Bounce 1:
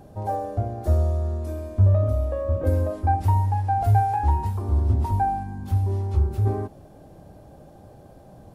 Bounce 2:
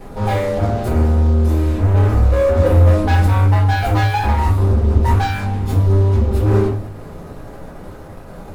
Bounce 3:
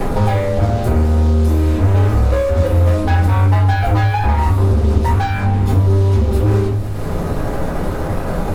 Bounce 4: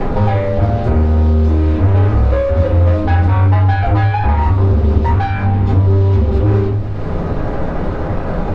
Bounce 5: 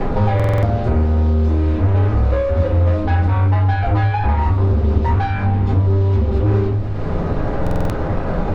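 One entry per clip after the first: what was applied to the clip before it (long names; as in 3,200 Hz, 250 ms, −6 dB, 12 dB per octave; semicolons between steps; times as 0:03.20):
leveller curve on the samples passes 5; rectangular room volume 32 cubic metres, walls mixed, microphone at 1.2 metres; level −11 dB
multiband upward and downward compressor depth 100%
high-frequency loss of the air 190 metres; level +1.5 dB
in parallel at −1 dB: speech leveller within 3 dB; on the sum: buffer that repeats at 0:00.35/0:07.62, samples 2,048, times 5; level −8.5 dB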